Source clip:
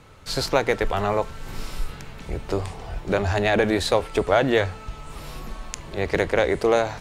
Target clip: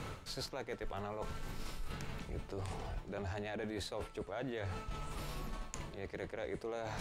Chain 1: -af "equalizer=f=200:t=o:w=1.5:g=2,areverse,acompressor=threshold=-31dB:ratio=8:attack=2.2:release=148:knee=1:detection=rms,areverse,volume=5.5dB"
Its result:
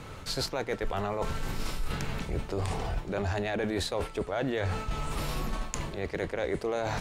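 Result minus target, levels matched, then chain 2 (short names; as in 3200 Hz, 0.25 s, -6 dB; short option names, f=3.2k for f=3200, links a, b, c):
compressor: peak gain reduction -10.5 dB
-af "equalizer=f=200:t=o:w=1.5:g=2,areverse,acompressor=threshold=-43dB:ratio=8:attack=2.2:release=148:knee=1:detection=rms,areverse,volume=5.5dB"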